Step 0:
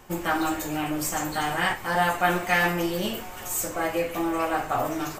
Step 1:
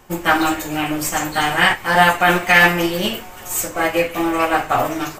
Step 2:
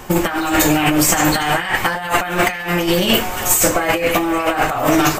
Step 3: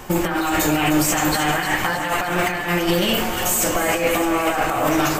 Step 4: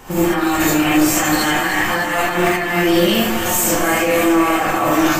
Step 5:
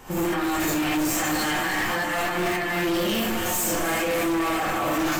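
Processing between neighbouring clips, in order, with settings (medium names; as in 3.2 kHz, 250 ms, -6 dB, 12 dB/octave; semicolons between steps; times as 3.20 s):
dynamic bell 2.5 kHz, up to +5 dB, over -40 dBFS, Q 0.94; loudness maximiser +10 dB; upward expansion 1.5:1, over -25 dBFS
compressor with a negative ratio -25 dBFS, ratio -1; trim +7.5 dB
peak limiter -8 dBFS, peak gain reduction 6.5 dB; echo whose repeats swap between lows and highs 153 ms, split 1.4 kHz, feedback 79%, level -8 dB; trim -2 dB
gated-style reverb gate 100 ms rising, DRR -7.5 dB; trim -5 dB
hard clipper -16 dBFS, distortion -9 dB; trim -5.5 dB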